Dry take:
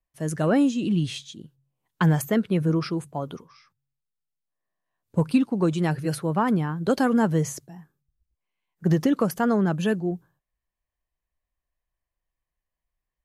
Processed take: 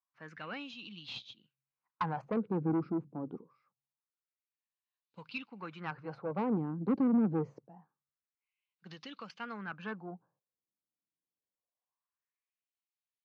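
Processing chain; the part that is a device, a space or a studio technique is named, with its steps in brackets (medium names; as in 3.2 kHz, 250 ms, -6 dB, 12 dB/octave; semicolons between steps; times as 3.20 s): wah-wah guitar rig (wah-wah 0.25 Hz 300–3600 Hz, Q 2.5; valve stage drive 27 dB, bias 0.4; cabinet simulation 110–4400 Hz, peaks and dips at 120 Hz +6 dB, 200 Hz +5 dB, 380 Hz -7 dB, 630 Hz -8 dB, 1.8 kHz -7 dB, 3.3 kHz -9 dB); trim +3 dB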